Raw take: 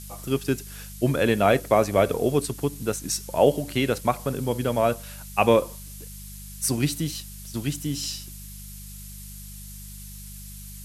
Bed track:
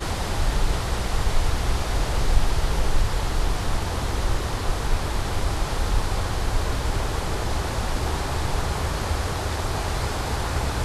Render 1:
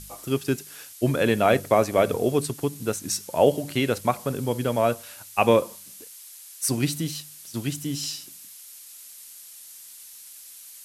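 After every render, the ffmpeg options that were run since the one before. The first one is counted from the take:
ffmpeg -i in.wav -af "bandreject=frequency=50:width_type=h:width=4,bandreject=frequency=100:width_type=h:width=4,bandreject=frequency=150:width_type=h:width=4,bandreject=frequency=200:width_type=h:width=4" out.wav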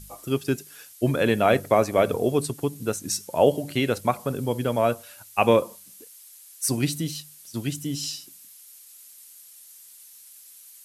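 ffmpeg -i in.wav -af "afftdn=noise_reduction=6:noise_floor=-45" out.wav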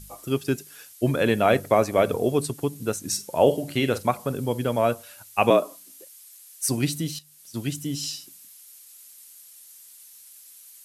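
ffmpeg -i in.wav -filter_complex "[0:a]asettb=1/sr,asplit=3[link_01][link_02][link_03];[link_01]atrim=end=3.084[link_04];[link_02]atrim=start=3.08:end=4.07,asetpts=PTS-STARTPTS,afade=type=in:duration=0.004:curve=qsin,afade=type=out:start_time=0.986:duration=0.004:curve=qsin,asplit=2[link_05][link_06];[link_06]adelay=45,volume=-12dB[link_07];[link_05][link_07]amix=inputs=2:normalize=0,atrim=end_sample=43659[link_08];[link_03]atrim=start=4.066[link_09];[link_04][link_08]acrossfade=duration=0.004:curve1=hsin:curve2=qsin[link_10];[link_10][link_09]acrossfade=duration=0.004:curve1=qsin:curve2=hsin,asettb=1/sr,asplit=3[link_11][link_12][link_13];[link_11]atrim=end=5.504[link_14];[link_12]atrim=start=5.5:end=6.67,asetpts=PTS-STARTPTS,afade=type=in:duration=0.004:curve=qsin,afade=type=out:start_time=1.166:duration=0.004:curve=qsin,afreqshift=80[link_15];[link_13]atrim=start=6.666[link_16];[link_14][link_15]acrossfade=duration=0.004:curve1=hsin:curve2=qsin[link_17];[link_17][link_16]acrossfade=duration=0.004:curve1=qsin:curve2=hsin,asplit=2[link_18][link_19];[link_18]atrim=end=7.19,asetpts=PTS-STARTPTS,afade=type=out:start_time=7.186:duration=0.004:curve=hsin:silence=0.223872[link_20];[link_19]atrim=start=7.19,asetpts=PTS-STARTPTS,afade=type=in:duration=0.54:curve=qsin:silence=0.223872[link_21];[link_20][link_21]concat=n=2:v=0:a=1" out.wav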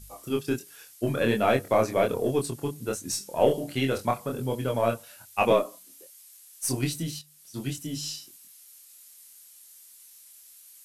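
ffmpeg -i in.wav -af "aeval=exprs='0.631*(cos(1*acos(clip(val(0)/0.631,-1,1)))-cos(1*PI/2))+0.0112*(cos(8*acos(clip(val(0)/0.631,-1,1)))-cos(8*PI/2))':channel_layout=same,flanger=delay=22.5:depth=4.4:speed=1.3" out.wav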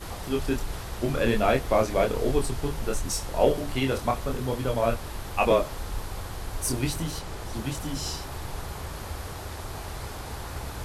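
ffmpeg -i in.wav -i bed.wav -filter_complex "[1:a]volume=-10.5dB[link_01];[0:a][link_01]amix=inputs=2:normalize=0" out.wav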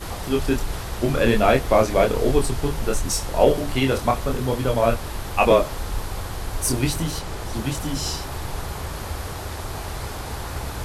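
ffmpeg -i in.wav -af "volume=5.5dB,alimiter=limit=-3dB:level=0:latency=1" out.wav

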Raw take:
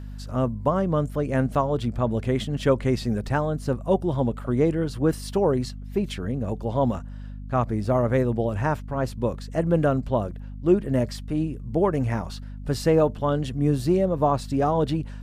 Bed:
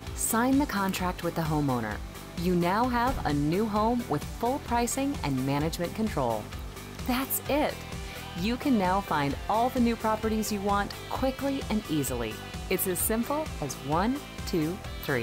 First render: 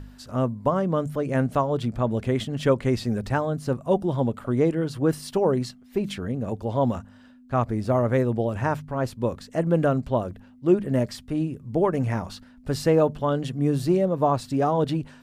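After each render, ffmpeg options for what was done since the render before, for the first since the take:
ffmpeg -i in.wav -af "bandreject=frequency=50:width_type=h:width=4,bandreject=frequency=100:width_type=h:width=4,bandreject=frequency=150:width_type=h:width=4,bandreject=frequency=200:width_type=h:width=4" out.wav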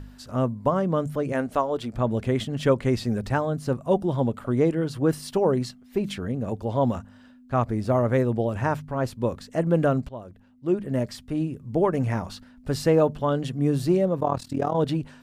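ffmpeg -i in.wav -filter_complex "[0:a]asettb=1/sr,asplit=3[link_01][link_02][link_03];[link_01]atrim=end=1.324[link_04];[link_02]atrim=start=1.32:end=1.95,asetpts=PTS-STARTPTS,afade=type=in:duration=0.004:curve=qsin,afade=type=out:start_time=0.626:duration=0.004:curve=qsin,equalizer=frequency=140:width=1.5:gain=-14[link_05];[link_03]atrim=start=1.946[link_06];[link_04][link_05]acrossfade=duration=0.004:curve1=hsin:curve2=qsin[link_07];[link_07][link_06]acrossfade=duration=0.004:curve1=qsin:curve2=hsin,asettb=1/sr,asplit=3[link_08][link_09][link_10];[link_08]atrim=end=14.204[link_11];[link_09]atrim=start=14.2:end=14.75,asetpts=PTS-STARTPTS,afade=type=in:duration=0.004:curve=qsin,afade=type=out:start_time=0.546:duration=0.004:curve=qsin,tremolo=f=40:d=0.857[link_12];[link_10]atrim=start=14.746[link_13];[link_11][link_12]acrossfade=duration=0.004:curve1=hsin:curve2=qsin[link_14];[link_14][link_13]acrossfade=duration=0.004:curve1=qsin:curve2=hsin,asplit=2[link_15][link_16];[link_15]atrim=end=10.09,asetpts=PTS-STARTPTS,afade=type=out:start_time=10.086:duration=0.004:curve=hsin:silence=0.149624[link_17];[link_16]atrim=start=10.09,asetpts=PTS-STARTPTS,afade=type=in:duration=1.8:curve=qsin:silence=0.149624[link_18];[link_17][link_18]concat=n=2:v=0:a=1" out.wav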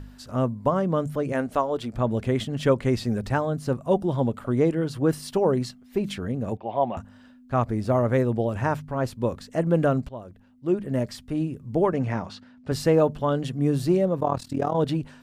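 ffmpeg -i in.wav -filter_complex "[0:a]asettb=1/sr,asplit=3[link_01][link_02][link_03];[link_01]atrim=end=6.574[link_04];[link_02]atrim=start=6.57:end=6.97,asetpts=PTS-STARTPTS,afade=type=in:duration=0.004:curve=qsin,afade=type=out:start_time=0.396:duration=0.004:curve=qsin,highpass=260,equalizer=frequency=260:width_type=q:width=4:gain=-7,equalizer=frequency=470:width_type=q:width=4:gain=-8,equalizer=frequency=730:width_type=q:width=4:gain=8,equalizer=frequency=1400:width_type=q:width=4:gain=-8,equalizer=frequency=2500:width_type=q:width=4:gain=8,lowpass=frequency=3000:width=0.5412,lowpass=frequency=3000:width=1.3066[link_05];[link_03]atrim=start=6.966[link_06];[link_04][link_05]acrossfade=duration=0.004:curve1=hsin:curve2=qsin[link_07];[link_07][link_06]acrossfade=duration=0.004:curve1=qsin:curve2=hsin,asettb=1/sr,asplit=3[link_08][link_09][link_10];[link_08]atrim=end=11.934[link_11];[link_09]atrim=start=11.93:end=12.72,asetpts=PTS-STARTPTS,afade=type=in:duration=0.004:curve=qsin,afade=type=out:start_time=0.786:duration=0.004:curve=qsin,highpass=110,lowpass=5400[link_12];[link_10]atrim=start=12.716[link_13];[link_11][link_12]acrossfade=duration=0.004:curve1=hsin:curve2=qsin[link_14];[link_14][link_13]acrossfade=duration=0.004:curve1=qsin:curve2=hsin" out.wav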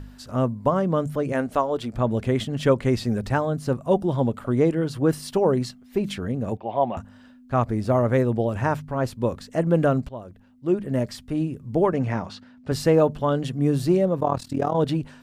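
ffmpeg -i in.wav -af "volume=1.5dB" out.wav

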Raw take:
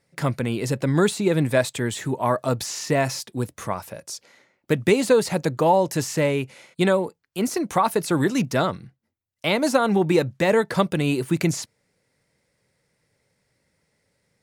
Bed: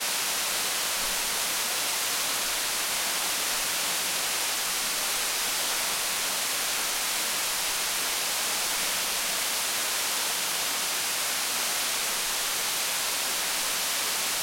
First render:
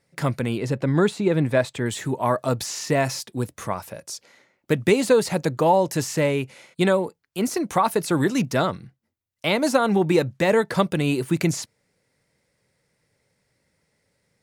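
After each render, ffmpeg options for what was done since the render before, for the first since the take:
ffmpeg -i in.wav -filter_complex "[0:a]asettb=1/sr,asplit=3[link_01][link_02][link_03];[link_01]atrim=end=0.584[link_04];[link_02]atrim=start=0.58:end=1.86,asetpts=PTS-STARTPTS,afade=type=in:duration=0.004:curve=qsin,afade=type=out:start_time=1.276:duration=0.004:curve=qsin,lowpass=frequency=2800:poles=1[link_05];[link_03]atrim=start=1.856[link_06];[link_04][link_05]acrossfade=duration=0.004:curve1=hsin:curve2=qsin[link_07];[link_07][link_06]acrossfade=duration=0.004:curve1=qsin:curve2=hsin" out.wav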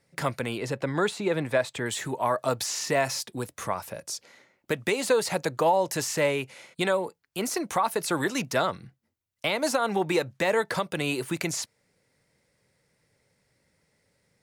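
ffmpeg -i in.wav -filter_complex "[0:a]acrossover=split=460[link_01][link_02];[link_01]acompressor=threshold=-40dB:ratio=2[link_03];[link_03][link_02]amix=inputs=2:normalize=0,alimiter=limit=-13.5dB:level=0:latency=1:release=199" out.wav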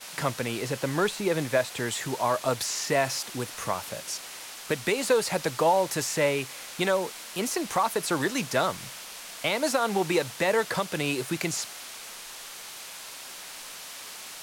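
ffmpeg -i in.wav -i bed.wav -filter_complex "[1:a]volume=-13.5dB[link_01];[0:a][link_01]amix=inputs=2:normalize=0" out.wav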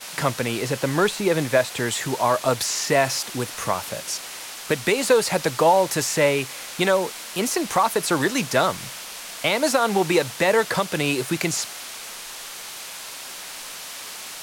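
ffmpeg -i in.wav -af "volume=5.5dB" out.wav

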